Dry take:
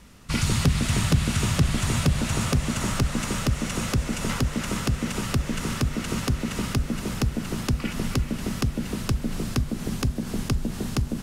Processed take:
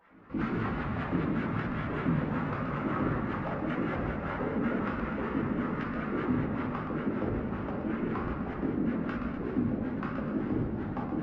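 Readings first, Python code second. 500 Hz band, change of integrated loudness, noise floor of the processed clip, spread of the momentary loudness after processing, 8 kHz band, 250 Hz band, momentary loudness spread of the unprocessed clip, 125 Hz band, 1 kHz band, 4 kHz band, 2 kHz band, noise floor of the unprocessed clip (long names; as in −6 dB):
−0.5 dB, −6.0 dB, −37 dBFS, 3 LU, below −40 dB, −2.5 dB, 6 LU, −10.5 dB, −1.5 dB, −21.5 dB, −5.5 dB, −35 dBFS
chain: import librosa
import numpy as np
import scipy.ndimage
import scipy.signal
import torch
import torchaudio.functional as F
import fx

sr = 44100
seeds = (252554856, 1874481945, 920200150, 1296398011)

p1 = scipy.signal.sosfilt(scipy.signal.butter(2, 2100.0, 'lowpass', fs=sr, output='sos'), x)
p2 = fx.peak_eq(p1, sr, hz=250.0, db=-5.5, octaves=0.44)
p3 = fx.rider(p2, sr, range_db=10, speed_s=0.5)
p4 = p2 + F.gain(torch.from_numpy(p3), -2.0).numpy()
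p5 = fx.wah_lfo(p4, sr, hz=5.2, low_hz=250.0, high_hz=1600.0, q=2.2)
p6 = p5 + fx.echo_split(p5, sr, split_hz=340.0, low_ms=281, high_ms=125, feedback_pct=52, wet_db=-6.5, dry=0)
p7 = fx.room_shoebox(p6, sr, seeds[0], volume_m3=230.0, walls='mixed', distance_m=2.2)
p8 = fx.vibrato_shape(p7, sr, shape='saw_up', rate_hz=4.8, depth_cents=100.0)
y = F.gain(torch.from_numpy(p8), -8.0).numpy()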